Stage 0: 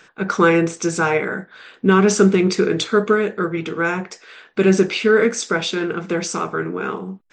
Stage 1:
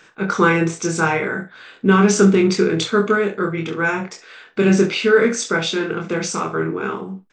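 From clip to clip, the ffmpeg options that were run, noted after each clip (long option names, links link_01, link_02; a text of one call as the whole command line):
ffmpeg -i in.wav -af "aecho=1:1:25|68:0.668|0.224,volume=-1dB" out.wav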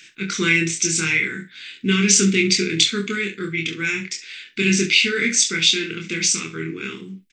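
ffmpeg -i in.wav -af "firequalizer=gain_entry='entry(340,0);entry(640,-27);entry(2100,13)':delay=0.05:min_phase=1,volume=-4.5dB" out.wav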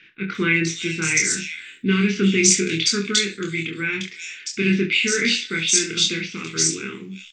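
ffmpeg -i in.wav -filter_complex "[0:a]acrossover=split=3100[link_01][link_02];[link_02]adelay=350[link_03];[link_01][link_03]amix=inputs=2:normalize=0" out.wav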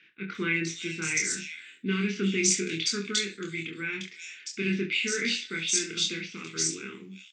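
ffmpeg -i in.wav -af "highpass=140,volume=-8.5dB" out.wav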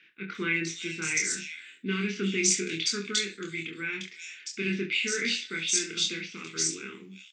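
ffmpeg -i in.wav -af "lowshelf=frequency=200:gain=-5" out.wav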